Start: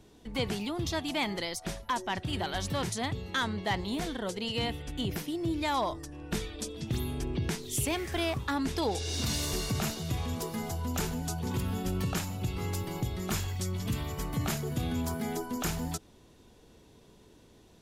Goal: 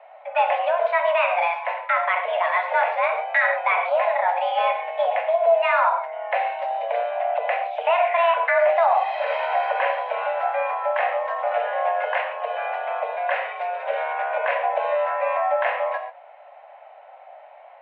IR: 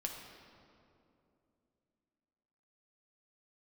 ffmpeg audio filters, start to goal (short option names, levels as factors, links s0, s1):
-filter_complex "[0:a]equalizer=f=900:t=o:w=0.62:g=-9,highpass=f=260:t=q:w=0.5412,highpass=f=260:t=q:w=1.307,lowpass=f=2100:t=q:w=0.5176,lowpass=f=2100:t=q:w=0.7071,lowpass=f=2100:t=q:w=1.932,afreqshift=340[s0];[1:a]atrim=start_sample=2205,afade=t=out:st=0.17:d=0.01,atrim=end_sample=7938,asetrate=37926,aresample=44100[s1];[s0][s1]afir=irnorm=-1:irlink=0,alimiter=level_in=17.8:limit=0.891:release=50:level=0:latency=1,volume=0.376"